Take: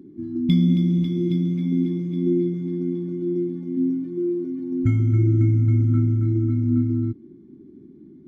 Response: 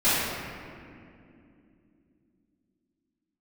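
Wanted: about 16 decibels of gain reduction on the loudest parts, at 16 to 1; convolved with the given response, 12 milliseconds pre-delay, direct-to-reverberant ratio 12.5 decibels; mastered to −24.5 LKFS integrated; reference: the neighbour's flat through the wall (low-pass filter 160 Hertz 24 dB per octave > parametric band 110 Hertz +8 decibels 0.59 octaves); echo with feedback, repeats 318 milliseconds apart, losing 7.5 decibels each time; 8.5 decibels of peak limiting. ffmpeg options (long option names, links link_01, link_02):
-filter_complex "[0:a]acompressor=threshold=-30dB:ratio=16,alimiter=level_in=6.5dB:limit=-24dB:level=0:latency=1,volume=-6.5dB,aecho=1:1:318|636|954|1272|1590:0.422|0.177|0.0744|0.0312|0.0131,asplit=2[link_01][link_02];[1:a]atrim=start_sample=2205,adelay=12[link_03];[link_02][link_03]afir=irnorm=-1:irlink=0,volume=-30dB[link_04];[link_01][link_04]amix=inputs=2:normalize=0,lowpass=frequency=160:width=0.5412,lowpass=frequency=160:width=1.3066,equalizer=frequency=110:width_type=o:width=0.59:gain=8,volume=3.5dB"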